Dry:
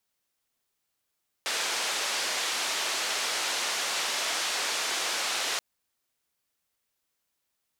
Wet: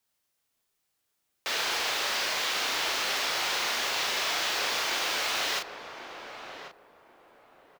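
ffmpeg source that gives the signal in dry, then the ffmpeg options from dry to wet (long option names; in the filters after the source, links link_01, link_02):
-f lavfi -i "anoisesrc=color=white:duration=4.13:sample_rate=44100:seed=1,highpass=frequency=470,lowpass=frequency=5900,volume=-19.3dB"
-filter_complex "[0:a]acrossover=split=110|6600[link_01][link_02][link_03];[link_03]aeval=exprs='(mod(89.1*val(0)+1,2)-1)/89.1':channel_layout=same[link_04];[link_01][link_02][link_04]amix=inputs=3:normalize=0,asplit=2[link_05][link_06];[link_06]adelay=36,volume=-4dB[link_07];[link_05][link_07]amix=inputs=2:normalize=0,asplit=2[link_08][link_09];[link_09]adelay=1089,lowpass=frequency=920:poles=1,volume=-6dB,asplit=2[link_10][link_11];[link_11]adelay=1089,lowpass=frequency=920:poles=1,volume=0.28,asplit=2[link_12][link_13];[link_13]adelay=1089,lowpass=frequency=920:poles=1,volume=0.28,asplit=2[link_14][link_15];[link_15]adelay=1089,lowpass=frequency=920:poles=1,volume=0.28[link_16];[link_08][link_10][link_12][link_14][link_16]amix=inputs=5:normalize=0"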